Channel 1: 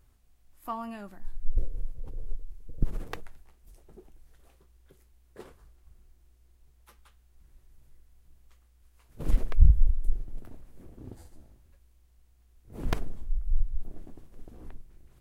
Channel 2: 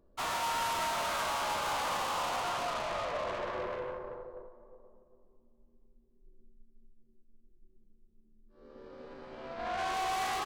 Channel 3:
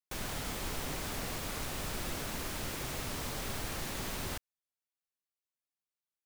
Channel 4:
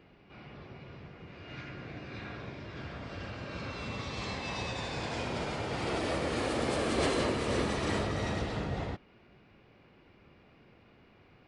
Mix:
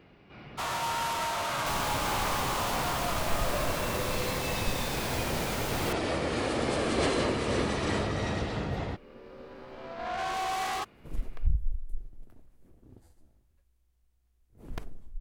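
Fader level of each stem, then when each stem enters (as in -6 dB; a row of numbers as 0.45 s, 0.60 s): -9.5 dB, +1.5 dB, +3.0 dB, +2.0 dB; 1.85 s, 0.40 s, 1.55 s, 0.00 s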